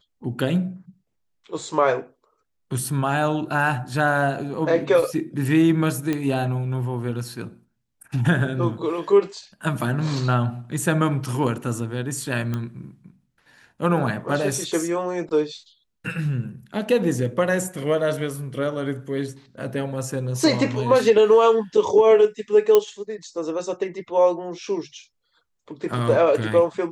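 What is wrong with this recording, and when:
0:06.13: click −12 dBFS
0:12.54: click −15 dBFS
0:22.75: click −4 dBFS

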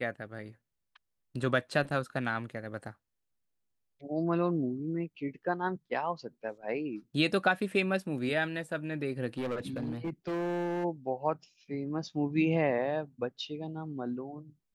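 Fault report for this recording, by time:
0:09.37–0:10.85: clipping −30 dBFS

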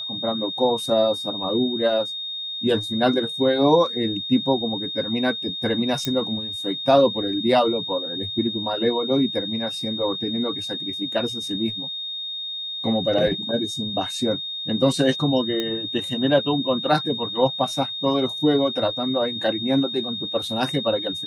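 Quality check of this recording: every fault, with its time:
whistle 3,700 Hz −28 dBFS
0:06.05: click −9 dBFS
0:15.60: click −12 dBFS

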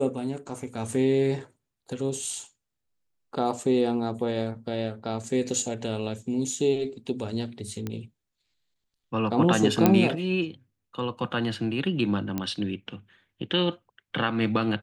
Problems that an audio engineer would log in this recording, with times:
0:07.87: click −18 dBFS
0:09.86: click −5 dBFS
0:12.38: click −15 dBFS

